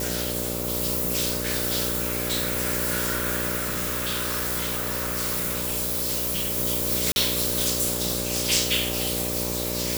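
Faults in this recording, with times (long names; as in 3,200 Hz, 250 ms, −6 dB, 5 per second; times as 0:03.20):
mains buzz 60 Hz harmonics 10 −31 dBFS
0:03.56–0:06.58: clipping −23 dBFS
0:07.12–0:07.16: drop-out 41 ms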